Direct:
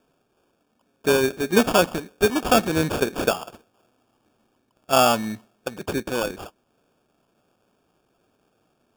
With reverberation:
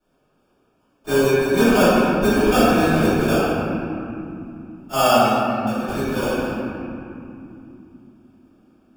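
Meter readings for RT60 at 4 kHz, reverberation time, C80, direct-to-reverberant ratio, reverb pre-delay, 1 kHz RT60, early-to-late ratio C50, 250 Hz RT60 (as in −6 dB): 1.6 s, 3.0 s, −3.0 dB, −19.5 dB, 3 ms, 2.7 s, −5.5 dB, 4.9 s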